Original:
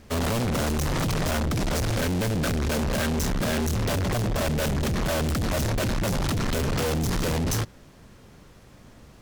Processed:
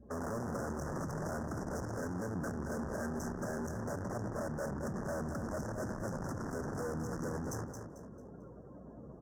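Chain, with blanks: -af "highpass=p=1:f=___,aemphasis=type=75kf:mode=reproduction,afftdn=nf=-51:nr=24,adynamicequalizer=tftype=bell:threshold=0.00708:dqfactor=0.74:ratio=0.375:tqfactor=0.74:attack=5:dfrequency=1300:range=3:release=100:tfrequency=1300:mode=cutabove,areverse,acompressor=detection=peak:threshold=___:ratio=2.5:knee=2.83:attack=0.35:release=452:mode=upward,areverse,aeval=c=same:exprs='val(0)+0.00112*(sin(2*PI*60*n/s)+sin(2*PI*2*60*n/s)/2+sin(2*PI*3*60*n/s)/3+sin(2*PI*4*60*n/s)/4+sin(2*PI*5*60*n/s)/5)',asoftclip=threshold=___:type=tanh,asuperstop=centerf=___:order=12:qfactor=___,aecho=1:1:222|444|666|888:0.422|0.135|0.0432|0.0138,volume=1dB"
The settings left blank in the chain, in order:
330, -40dB, -37dB, 3100, 0.82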